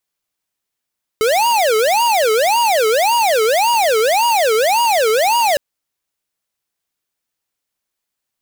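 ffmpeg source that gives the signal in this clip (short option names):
-f lavfi -i "aevalsrc='0.2*(2*lt(mod((692*t-262/(2*PI*1.8)*sin(2*PI*1.8*t)),1),0.5)-1)':d=4.36:s=44100"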